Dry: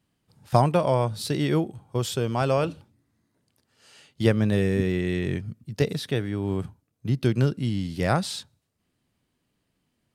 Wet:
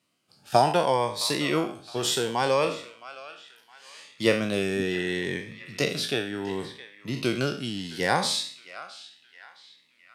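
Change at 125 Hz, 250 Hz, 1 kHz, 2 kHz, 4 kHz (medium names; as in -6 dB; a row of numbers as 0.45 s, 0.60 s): -10.5 dB, -4.0 dB, +2.5 dB, +5.0 dB, +7.0 dB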